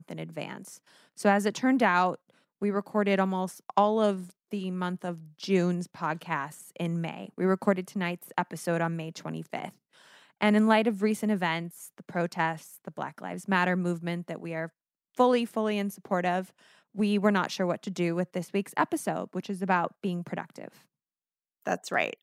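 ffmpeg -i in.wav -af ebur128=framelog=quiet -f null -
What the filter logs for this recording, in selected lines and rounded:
Integrated loudness:
  I:         -29.0 LUFS
  Threshold: -39.6 LUFS
Loudness range:
  LRA:         4.0 LU
  Threshold: -49.6 LUFS
  LRA low:   -31.7 LUFS
  LRA high:  -27.8 LUFS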